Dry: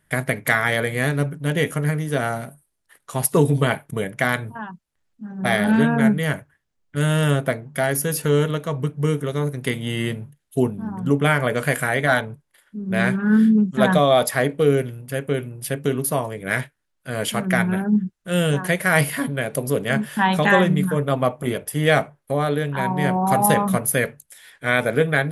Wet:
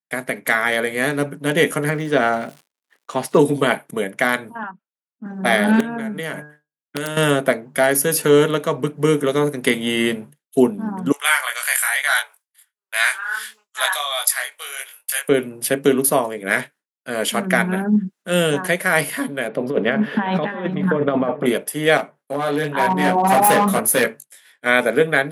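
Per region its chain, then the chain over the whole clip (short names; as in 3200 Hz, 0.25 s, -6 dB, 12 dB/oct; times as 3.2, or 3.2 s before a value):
1.89–3.38 LPF 4900 Hz + crackle 140/s -39 dBFS
4.63–5.26 speaker cabinet 230–2600 Hz, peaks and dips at 360 Hz -5 dB, 1400 Hz +8 dB, 2000 Hz -7 dB + Doppler distortion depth 0.11 ms
5.8–7.17 de-hum 149.4 Hz, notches 11 + compressor 12:1, threshold -25 dBFS + wrapped overs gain 18.5 dB
11.12–15.29 HPF 820 Hz 24 dB/oct + chorus 1 Hz, delay 20 ms, depth 4.2 ms + tilt +4 dB/oct
19.48–21.46 negative-ratio compressor -22 dBFS, ratio -0.5 + air absorption 340 m + echo 0.37 s -17 dB
21.97–24.66 chorus 1 Hz, delay 17 ms, depth 4.7 ms + hard clip -19 dBFS
whole clip: expander -42 dBFS; HPF 200 Hz 24 dB/oct; AGC; gain -1 dB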